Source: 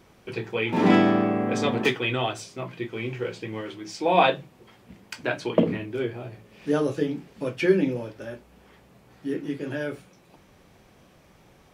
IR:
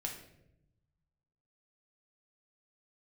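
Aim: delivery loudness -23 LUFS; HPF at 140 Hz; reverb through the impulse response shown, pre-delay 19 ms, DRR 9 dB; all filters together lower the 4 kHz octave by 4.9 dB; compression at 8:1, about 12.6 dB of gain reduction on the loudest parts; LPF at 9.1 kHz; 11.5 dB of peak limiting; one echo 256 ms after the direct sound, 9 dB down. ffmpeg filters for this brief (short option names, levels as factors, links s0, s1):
-filter_complex "[0:a]highpass=140,lowpass=9100,equalizer=f=4000:t=o:g=-6.5,acompressor=threshold=0.0447:ratio=8,alimiter=level_in=1.19:limit=0.0631:level=0:latency=1,volume=0.841,aecho=1:1:256:0.355,asplit=2[s0][s1];[1:a]atrim=start_sample=2205,adelay=19[s2];[s1][s2]afir=irnorm=-1:irlink=0,volume=0.355[s3];[s0][s3]amix=inputs=2:normalize=0,volume=4.22"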